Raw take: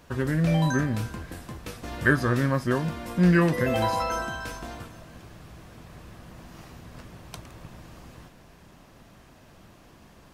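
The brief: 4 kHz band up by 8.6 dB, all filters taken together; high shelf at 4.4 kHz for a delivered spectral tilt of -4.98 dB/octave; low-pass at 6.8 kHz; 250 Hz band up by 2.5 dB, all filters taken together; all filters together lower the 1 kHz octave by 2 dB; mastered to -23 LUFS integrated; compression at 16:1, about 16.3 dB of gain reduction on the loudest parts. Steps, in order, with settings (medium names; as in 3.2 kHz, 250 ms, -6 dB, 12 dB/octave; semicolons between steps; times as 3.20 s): low-pass 6.8 kHz; peaking EQ 250 Hz +4 dB; peaking EQ 1 kHz -3.5 dB; peaking EQ 4 kHz +8 dB; treble shelf 4.4 kHz +6.5 dB; compression 16:1, threshold -29 dBFS; trim +13.5 dB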